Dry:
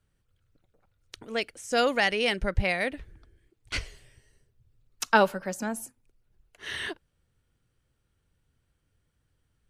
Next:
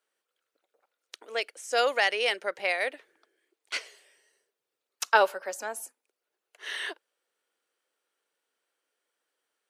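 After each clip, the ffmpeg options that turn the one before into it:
-af "highpass=f=420:w=0.5412,highpass=f=420:w=1.3066"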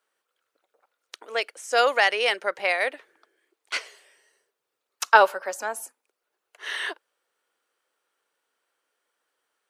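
-af "equalizer=f=1100:w=1.1:g=5,volume=1.33"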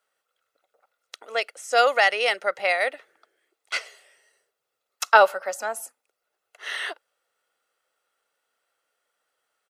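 -af "aecho=1:1:1.5:0.41"

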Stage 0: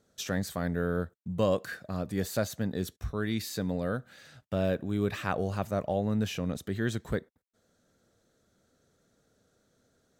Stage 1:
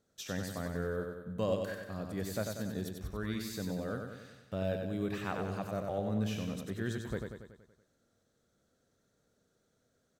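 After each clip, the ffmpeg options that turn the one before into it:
-af "aecho=1:1:94|188|282|376|470|564|658:0.562|0.315|0.176|0.0988|0.0553|0.031|0.0173,volume=0.447"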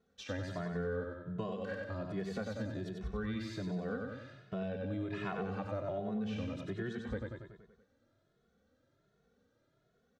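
-filter_complex "[0:a]lowpass=3500,acompressor=threshold=0.0178:ratio=6,asplit=2[s0][s1];[s1]adelay=2.3,afreqshift=1.3[s2];[s0][s2]amix=inputs=2:normalize=1,volume=1.68"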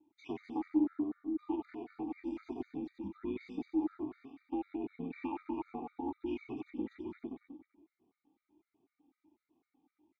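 -filter_complex "[0:a]aeval=exprs='val(0)*sin(2*PI*140*n/s)':c=same,asplit=3[s0][s1][s2];[s0]bandpass=f=300:t=q:w=8,volume=1[s3];[s1]bandpass=f=870:t=q:w=8,volume=0.501[s4];[s2]bandpass=f=2240:t=q:w=8,volume=0.355[s5];[s3][s4][s5]amix=inputs=3:normalize=0,afftfilt=real='re*gt(sin(2*PI*4*pts/sr)*(1-2*mod(floor(b*sr/1024/1200),2)),0)':imag='im*gt(sin(2*PI*4*pts/sr)*(1-2*mod(floor(b*sr/1024/1200),2)),0)':win_size=1024:overlap=0.75,volume=6.68"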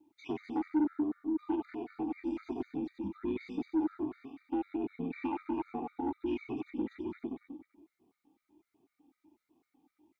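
-af "asoftclip=type=tanh:threshold=0.0422,volume=1.68"

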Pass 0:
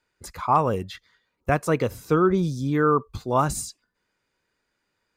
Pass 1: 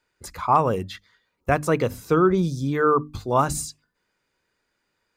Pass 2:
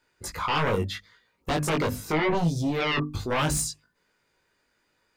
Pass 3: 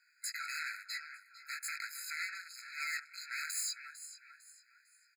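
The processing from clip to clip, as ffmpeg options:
-af "bandreject=f=50:t=h:w=6,bandreject=f=100:t=h:w=6,bandreject=f=150:t=h:w=6,bandreject=f=200:t=h:w=6,bandreject=f=250:t=h:w=6,bandreject=f=300:t=h:w=6,volume=1.19"
-af "alimiter=limit=0.237:level=0:latency=1:release=16,aeval=exprs='0.237*sin(PI/2*2.51*val(0)/0.237)':c=same,flanger=delay=18:depth=2.1:speed=0.77,volume=0.531"
-filter_complex "[0:a]asplit=4[s0][s1][s2][s3];[s1]adelay=451,afreqshift=65,volume=0.1[s4];[s2]adelay=902,afreqshift=130,volume=0.032[s5];[s3]adelay=1353,afreqshift=195,volume=0.0102[s6];[s0][s4][s5][s6]amix=inputs=4:normalize=0,asoftclip=type=tanh:threshold=0.0211,afftfilt=real='re*eq(mod(floor(b*sr/1024/1300),2),1)':imag='im*eq(mod(floor(b*sr/1024/1300),2),1)':win_size=1024:overlap=0.75,volume=1.33"

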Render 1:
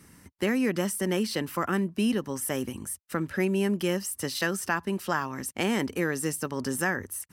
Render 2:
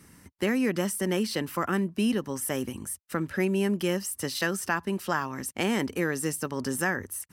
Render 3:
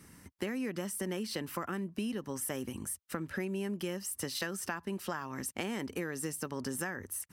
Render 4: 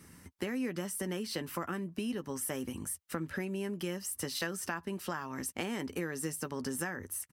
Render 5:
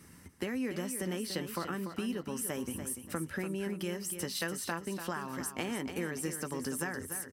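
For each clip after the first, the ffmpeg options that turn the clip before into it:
-af anull
-af "acompressor=threshold=0.0282:ratio=6,volume=0.794"
-filter_complex "[0:a]asplit=2[s0][s1];[s1]adelay=12,volume=0.251[s2];[s0][s2]amix=inputs=2:normalize=0"
-af "aecho=1:1:291|582|873:0.355|0.103|0.0298"

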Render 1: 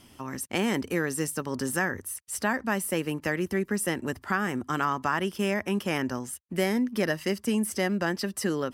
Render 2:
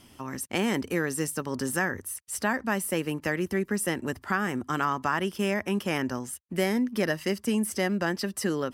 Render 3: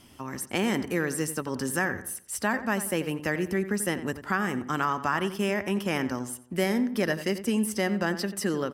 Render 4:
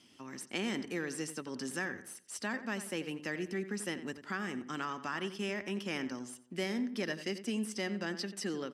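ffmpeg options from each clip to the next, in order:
-af anull
-filter_complex "[0:a]asplit=2[s0][s1];[s1]adelay=89,lowpass=f=2700:p=1,volume=0.251,asplit=2[s2][s3];[s3]adelay=89,lowpass=f=2700:p=1,volume=0.38,asplit=2[s4][s5];[s5]adelay=89,lowpass=f=2700:p=1,volume=0.38,asplit=2[s6][s7];[s7]adelay=89,lowpass=f=2700:p=1,volume=0.38[s8];[s0][s2][s4][s6][s8]amix=inputs=5:normalize=0"
-af "equalizer=f=850:w=0.45:g=-13,aeval=exprs='0.126*(cos(1*acos(clip(val(0)/0.126,-1,1)))-cos(1*PI/2))+0.00562*(cos(4*acos(clip(val(0)/0.126,-1,1)))-cos(4*PI/2))':c=same,highpass=270,lowpass=5500"

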